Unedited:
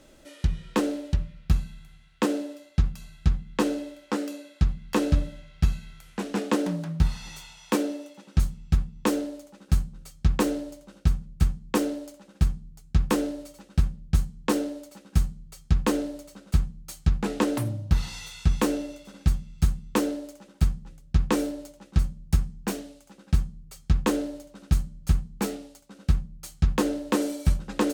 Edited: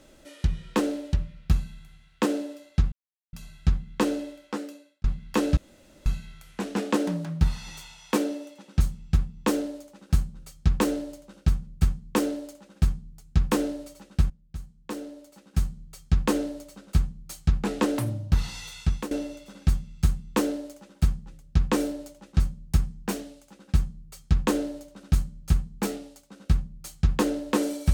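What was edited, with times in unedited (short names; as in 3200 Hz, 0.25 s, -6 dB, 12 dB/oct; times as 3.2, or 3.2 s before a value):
2.92 insert silence 0.41 s
3.84–4.63 fade out
5.16–5.65 room tone
13.89–15.41 fade in quadratic, from -16.5 dB
18.39–18.7 fade out, to -17.5 dB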